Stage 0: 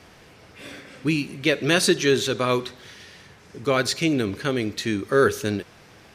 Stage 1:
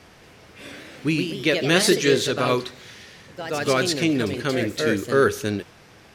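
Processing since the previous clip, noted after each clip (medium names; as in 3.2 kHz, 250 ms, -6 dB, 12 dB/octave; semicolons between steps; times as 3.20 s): ever faster or slower copies 234 ms, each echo +2 st, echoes 2, each echo -6 dB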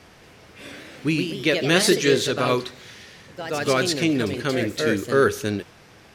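no audible change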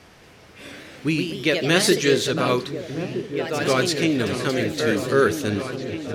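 delay with an opening low-pass 634 ms, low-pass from 200 Hz, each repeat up 2 oct, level -6 dB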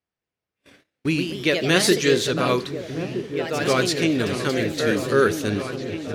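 gate -36 dBFS, range -40 dB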